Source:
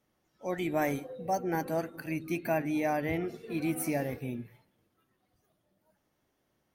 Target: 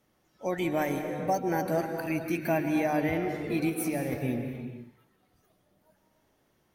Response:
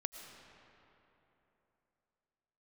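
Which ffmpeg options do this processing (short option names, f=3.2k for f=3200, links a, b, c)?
-filter_complex "[0:a]asettb=1/sr,asplit=3[a][b][c];[a]atrim=end=3.694[d];[b]atrim=start=3.69:end=4.12,asetpts=PTS-STARTPTS,afade=t=in:d=0.004:c=qsin,afade=t=out:st=0.426:d=0.004:c=qsin,acompressor=threshold=-33dB:ratio=6[e];[c]atrim=start=4.116[f];[d][e]acrossfade=d=0.004:c1=hsin:c2=qsin[g];[g][f]acrossfade=d=0.004:c1=qsin:c2=hsin,alimiter=limit=-24dB:level=0:latency=1:release=431[h];[1:a]atrim=start_sample=2205,afade=t=out:st=0.4:d=0.01,atrim=end_sample=18081,asetrate=31752,aresample=44100[i];[h][i]afir=irnorm=-1:irlink=0,volume=6dB"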